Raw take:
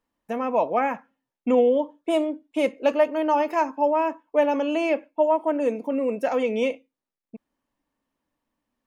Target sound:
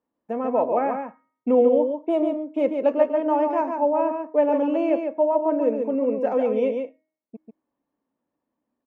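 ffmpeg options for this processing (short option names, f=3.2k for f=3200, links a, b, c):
-filter_complex "[0:a]bandpass=f=390:t=q:w=0.66:csg=0,bandreject=f=313.6:t=h:w=4,bandreject=f=627.2:t=h:w=4,bandreject=f=940.8:t=h:w=4,bandreject=f=1.2544k:t=h:w=4,bandreject=f=1.568k:t=h:w=4,bandreject=f=1.8816k:t=h:w=4,bandreject=f=2.1952k:t=h:w=4,asplit=2[a][b];[b]aecho=0:1:142:0.531[c];[a][c]amix=inputs=2:normalize=0,volume=2dB"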